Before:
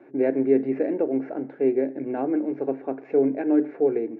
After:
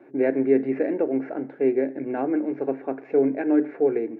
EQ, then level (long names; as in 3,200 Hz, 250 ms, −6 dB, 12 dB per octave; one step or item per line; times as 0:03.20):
dynamic equaliser 1,800 Hz, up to +5 dB, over −45 dBFS, Q 0.97
0.0 dB